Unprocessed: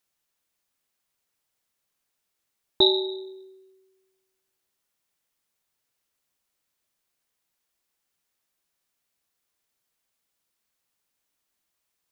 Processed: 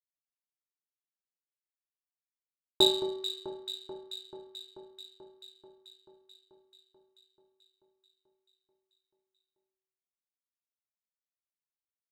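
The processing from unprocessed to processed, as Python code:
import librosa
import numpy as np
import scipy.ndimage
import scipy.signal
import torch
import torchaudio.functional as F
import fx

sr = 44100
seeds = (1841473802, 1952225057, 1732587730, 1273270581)

y = fx.power_curve(x, sr, exponent=1.4)
y = fx.echo_alternate(y, sr, ms=218, hz=1600.0, feedback_pct=83, wet_db=-10.0)
y = y * librosa.db_to_amplitude(-1.5)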